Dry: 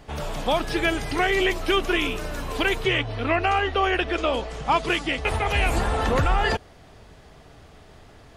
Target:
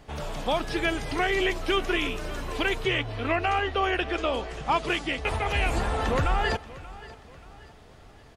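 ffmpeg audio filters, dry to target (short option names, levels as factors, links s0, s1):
-filter_complex "[0:a]acrossover=split=10000[s0][s1];[s1]acompressor=threshold=0.00158:ratio=4:attack=1:release=60[s2];[s0][s2]amix=inputs=2:normalize=0,aecho=1:1:582|1164|1746:0.119|0.0487|0.02,volume=0.668"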